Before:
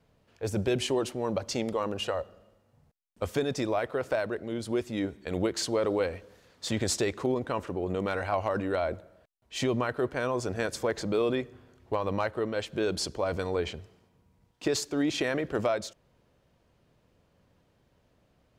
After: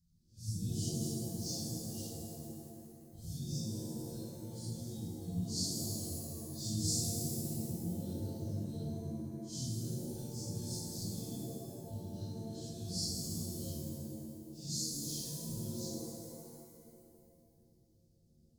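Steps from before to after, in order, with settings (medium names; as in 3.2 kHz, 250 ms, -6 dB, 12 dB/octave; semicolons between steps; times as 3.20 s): phase randomisation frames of 200 ms; elliptic band-stop 170–4900 Hz, stop band 40 dB; pitch-shifted reverb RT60 2.1 s, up +7 st, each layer -2 dB, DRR 1 dB; trim -3 dB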